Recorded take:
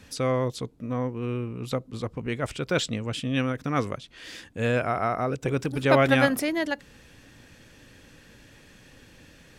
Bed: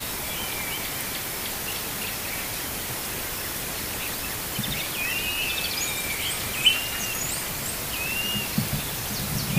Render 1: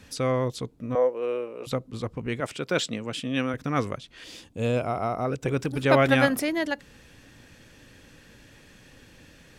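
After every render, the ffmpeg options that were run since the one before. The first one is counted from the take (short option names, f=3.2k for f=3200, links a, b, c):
-filter_complex "[0:a]asettb=1/sr,asplit=3[a][b][c];[a]atrim=end=0.954[d];[b]atrim=start=0.95:end=1.67,asetpts=PTS-STARTPTS,afade=t=in:d=0.004:c=qsin,afade=t=out:st=0.716:d=0.004:c=qsin,highpass=f=540:t=q:w=5[e];[c]atrim=start=1.666[f];[d][e]acrossfade=d=0.004:c1=hsin:c2=qsin[g];[g][f]acrossfade=d=0.004:c1=qsin:c2=hsin,asettb=1/sr,asplit=3[h][i][j];[h]atrim=end=2.404[k];[i]atrim=start=2.4:end=3.54,asetpts=PTS-STARTPTS,afade=t=in:d=0.004:c=qsin,afade=t=out:st=1.136:d=0.004:c=qsin,highpass=170[l];[j]atrim=start=3.536[m];[k][l]acrossfade=d=0.004:c1=hsin:c2=qsin[n];[n][m]acrossfade=d=0.004:c1=qsin:c2=hsin,asettb=1/sr,asplit=3[o][p][q];[o]atrim=end=4.244[r];[p]atrim=start=4.24:end=5.25,asetpts=PTS-STARTPTS,afade=t=in:d=0.004:c=qsin,afade=t=out:st=1.006:d=0.004:c=qsin,equalizer=f=1.7k:t=o:w=0.63:g=-13[s];[q]atrim=start=5.246[t];[r][s]acrossfade=d=0.004:c1=hsin:c2=qsin[u];[u][t]acrossfade=d=0.004:c1=qsin:c2=hsin"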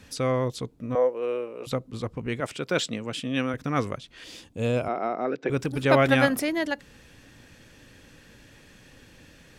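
-filter_complex "[0:a]asettb=1/sr,asplit=3[a][b][c];[a]atrim=end=4.884[d];[b]atrim=start=4.88:end=5.5,asetpts=PTS-STARTPTS,afade=t=in:d=0.004:c=qsin,afade=t=out:st=0.616:d=0.004:c=qsin,highpass=f=210:w=0.5412,highpass=f=210:w=1.3066,equalizer=f=360:t=q:w=4:g=4,equalizer=f=1.1k:t=q:w=4:g=-4,equalizer=f=1.7k:t=q:w=4:g=5,equalizer=f=3k:t=q:w=4:g=-5,lowpass=f=4.4k:w=0.5412,lowpass=f=4.4k:w=1.3066[e];[c]atrim=start=5.496[f];[d][e]acrossfade=d=0.004:c1=hsin:c2=qsin[g];[g][f]acrossfade=d=0.004:c1=qsin:c2=hsin"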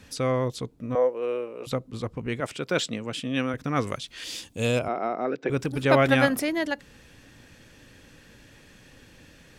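-filter_complex "[0:a]asettb=1/sr,asplit=3[a][b][c];[a]atrim=end=3.874[d];[b]atrim=start=3.87:end=4.79,asetpts=PTS-STARTPTS,afade=t=in:d=0.004:c=qsin,afade=t=out:st=0.916:d=0.004:c=qsin,highshelf=f=2.3k:g=11.5[e];[c]atrim=start=4.786[f];[d][e]acrossfade=d=0.004:c1=hsin:c2=qsin[g];[g][f]acrossfade=d=0.004:c1=qsin:c2=hsin"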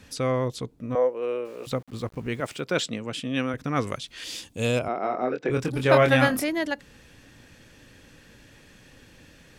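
-filter_complex "[0:a]asettb=1/sr,asplit=3[a][b][c];[a]atrim=end=1.454[d];[b]atrim=start=1.45:end=2.61,asetpts=PTS-STARTPTS,afade=t=in:d=0.004:c=qsin,afade=t=out:st=1.156:d=0.004:c=qsin,aeval=exprs='val(0)*gte(abs(val(0)),0.00398)':c=same[e];[c]atrim=start=2.606[f];[d][e]acrossfade=d=0.004:c1=hsin:c2=qsin[g];[g][f]acrossfade=d=0.004:c1=qsin:c2=hsin,asettb=1/sr,asplit=3[h][i][j];[h]atrim=end=5.014[k];[i]atrim=start=5.01:end=6.44,asetpts=PTS-STARTPTS,afade=t=in:d=0.004:c=qsin,afade=t=out:st=1.426:d=0.004:c=qsin,asplit=2[l][m];[m]adelay=24,volume=-5dB[n];[l][n]amix=inputs=2:normalize=0,atrim=end_sample=63063[o];[j]atrim=start=6.436[p];[k][o]acrossfade=d=0.004:c1=hsin:c2=qsin[q];[q][p]acrossfade=d=0.004:c1=qsin:c2=hsin"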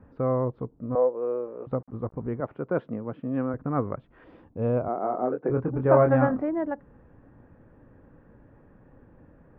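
-af "lowpass=f=1.2k:w=0.5412,lowpass=f=1.2k:w=1.3066"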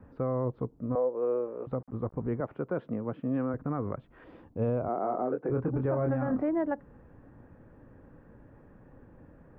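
-filter_complex "[0:a]acrossover=split=400[a][b];[b]acompressor=threshold=-26dB:ratio=3[c];[a][c]amix=inputs=2:normalize=0,alimiter=limit=-21dB:level=0:latency=1:release=75"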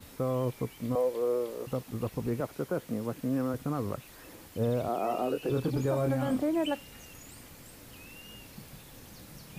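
-filter_complex "[1:a]volume=-22.5dB[a];[0:a][a]amix=inputs=2:normalize=0"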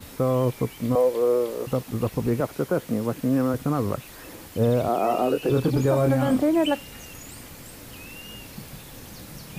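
-af "volume=8dB"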